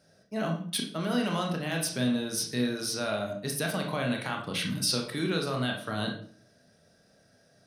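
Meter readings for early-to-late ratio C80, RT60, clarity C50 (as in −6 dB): 11.0 dB, 0.50 s, 7.0 dB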